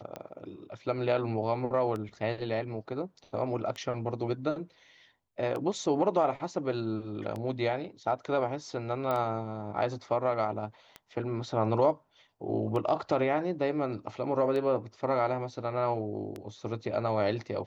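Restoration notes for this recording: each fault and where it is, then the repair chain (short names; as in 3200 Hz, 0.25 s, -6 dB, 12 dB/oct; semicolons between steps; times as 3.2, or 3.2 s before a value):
tick 33 1/3 rpm -24 dBFS
9.11 pop -19 dBFS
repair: de-click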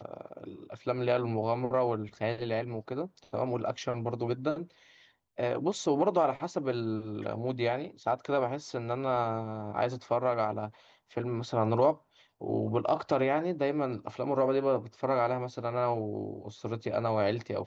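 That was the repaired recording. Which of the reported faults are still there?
none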